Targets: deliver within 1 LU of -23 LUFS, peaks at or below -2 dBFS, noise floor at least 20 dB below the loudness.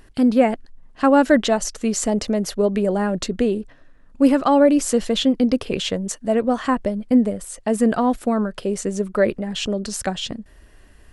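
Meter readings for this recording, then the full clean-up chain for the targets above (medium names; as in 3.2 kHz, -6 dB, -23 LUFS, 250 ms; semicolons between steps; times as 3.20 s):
loudness -20.0 LUFS; peak level -3.5 dBFS; loudness target -23.0 LUFS
-> trim -3 dB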